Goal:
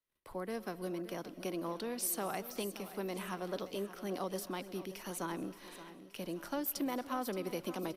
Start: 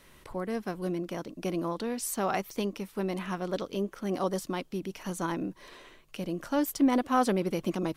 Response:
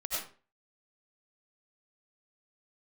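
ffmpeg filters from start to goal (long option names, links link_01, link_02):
-filter_complex "[0:a]agate=range=-33dB:threshold=-51dB:ratio=16:detection=peak,equalizer=frequency=7300:width_type=o:width=0.85:gain=-10,acrossover=split=170|350[link_01][link_02][link_03];[link_01]acompressor=threshold=-44dB:ratio=4[link_04];[link_02]acompressor=threshold=-38dB:ratio=4[link_05];[link_03]acompressor=threshold=-32dB:ratio=4[link_06];[link_04][link_05][link_06]amix=inputs=3:normalize=0,bass=frequency=250:gain=-4,treble=frequency=4000:gain=9,aecho=1:1:574|1148|1722|2296|2870:0.2|0.0998|0.0499|0.0249|0.0125,asplit=2[link_07][link_08];[1:a]atrim=start_sample=2205,adelay=130[link_09];[link_08][link_09]afir=irnorm=-1:irlink=0,volume=-21.5dB[link_10];[link_07][link_10]amix=inputs=2:normalize=0,aresample=32000,aresample=44100,volume=-4.5dB"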